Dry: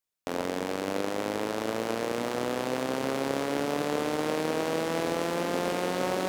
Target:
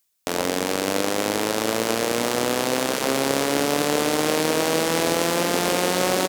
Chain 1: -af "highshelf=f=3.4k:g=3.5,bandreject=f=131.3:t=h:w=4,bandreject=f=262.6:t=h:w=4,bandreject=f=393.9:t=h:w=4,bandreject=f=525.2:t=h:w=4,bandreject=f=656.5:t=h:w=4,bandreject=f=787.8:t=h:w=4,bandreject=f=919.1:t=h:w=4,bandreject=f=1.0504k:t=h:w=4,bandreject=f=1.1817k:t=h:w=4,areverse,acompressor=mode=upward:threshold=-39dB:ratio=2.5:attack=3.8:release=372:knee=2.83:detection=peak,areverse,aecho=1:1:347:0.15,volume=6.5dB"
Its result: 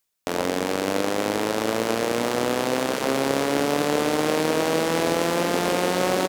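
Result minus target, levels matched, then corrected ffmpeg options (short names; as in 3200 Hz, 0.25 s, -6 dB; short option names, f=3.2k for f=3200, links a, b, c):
8000 Hz band -4.5 dB
-af "highshelf=f=3.4k:g=10.5,bandreject=f=131.3:t=h:w=4,bandreject=f=262.6:t=h:w=4,bandreject=f=393.9:t=h:w=4,bandreject=f=525.2:t=h:w=4,bandreject=f=656.5:t=h:w=4,bandreject=f=787.8:t=h:w=4,bandreject=f=919.1:t=h:w=4,bandreject=f=1.0504k:t=h:w=4,bandreject=f=1.1817k:t=h:w=4,areverse,acompressor=mode=upward:threshold=-39dB:ratio=2.5:attack=3.8:release=372:knee=2.83:detection=peak,areverse,aecho=1:1:347:0.15,volume=6.5dB"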